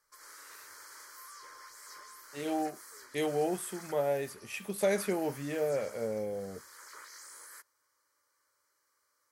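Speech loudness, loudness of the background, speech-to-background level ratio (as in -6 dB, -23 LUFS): -34.0 LUFS, -49.5 LUFS, 15.5 dB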